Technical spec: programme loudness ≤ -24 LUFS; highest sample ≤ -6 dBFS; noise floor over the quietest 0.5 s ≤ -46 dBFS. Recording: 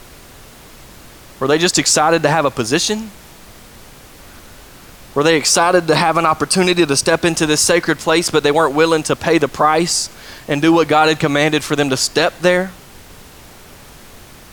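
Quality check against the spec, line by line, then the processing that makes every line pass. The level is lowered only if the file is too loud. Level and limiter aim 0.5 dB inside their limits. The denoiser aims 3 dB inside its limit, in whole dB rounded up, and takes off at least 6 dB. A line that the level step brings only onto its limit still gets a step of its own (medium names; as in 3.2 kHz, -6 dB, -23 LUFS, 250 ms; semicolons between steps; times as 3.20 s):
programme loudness -14.5 LUFS: fail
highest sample -2.0 dBFS: fail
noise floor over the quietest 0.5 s -40 dBFS: fail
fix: trim -10 dB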